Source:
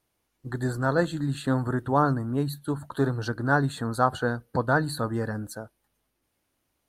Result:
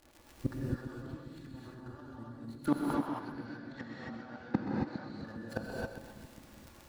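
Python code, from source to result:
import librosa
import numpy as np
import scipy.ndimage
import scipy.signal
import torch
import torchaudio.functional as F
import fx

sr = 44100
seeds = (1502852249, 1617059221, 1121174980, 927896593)

y = scipy.signal.medfilt(x, 15)
y = fx.peak_eq(y, sr, hz=3100.0, db=2.5, octaves=1.6)
y = y + 0.51 * np.pad(y, (int(3.5 * sr / 1000.0), 0))[:len(y)]
y = fx.over_compress(y, sr, threshold_db=-31.0, ratio=-1.0)
y = fx.dmg_crackle(y, sr, seeds[0], per_s=95.0, level_db=-53.0)
y = fx.tremolo_shape(y, sr, shape='saw_up', hz=9.4, depth_pct=75)
y = fx.gate_flip(y, sr, shuts_db=-31.0, range_db=-31)
y = fx.cabinet(y, sr, low_hz=130.0, low_slope=12, high_hz=5700.0, hz=(210.0, 400.0, 720.0, 2100.0), db=(4, -4, 6, 10), at=(2.68, 5.1))
y = fx.echo_split(y, sr, split_hz=320.0, low_ms=405, high_ms=128, feedback_pct=52, wet_db=-10)
y = fx.rev_gated(y, sr, seeds[1], gate_ms=300, shape='rising', drr_db=-3.0)
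y = y * 10.0 ** (13.5 / 20.0)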